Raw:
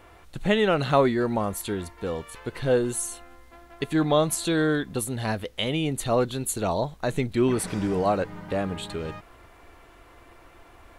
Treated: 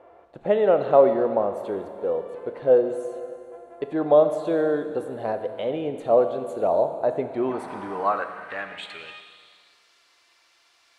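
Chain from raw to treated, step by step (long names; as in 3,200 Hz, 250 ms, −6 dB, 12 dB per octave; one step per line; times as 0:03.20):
four-comb reverb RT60 2.4 s, combs from 27 ms, DRR 8 dB
band-pass filter sweep 570 Hz → 4,900 Hz, 0:07.23–0:09.83
level +7.5 dB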